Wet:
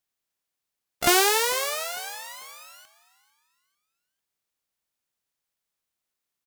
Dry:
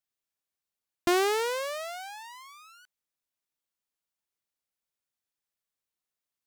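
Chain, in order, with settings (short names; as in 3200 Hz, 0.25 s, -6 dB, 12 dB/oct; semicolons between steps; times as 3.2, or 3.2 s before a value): spectral contrast lowered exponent 0.61; harmoniser +3 st -17 dB, +12 st -4 dB; frequency-shifting echo 0.447 s, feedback 38%, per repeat +44 Hz, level -20.5 dB; gain +4 dB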